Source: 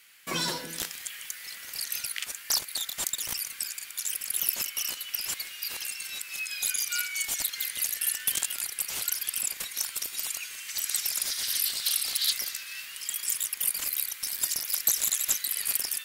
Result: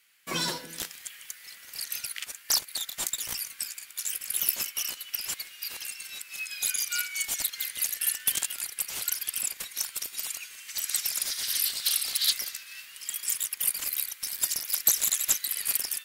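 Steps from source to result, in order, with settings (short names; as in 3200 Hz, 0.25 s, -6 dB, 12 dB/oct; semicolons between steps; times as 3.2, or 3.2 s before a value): in parallel at -8 dB: soft clip -22.5 dBFS, distortion -12 dB; 2.91–4.83 on the sum: doubler 17 ms -10 dB; upward expander 1.5:1, over -44 dBFS; gain +1.5 dB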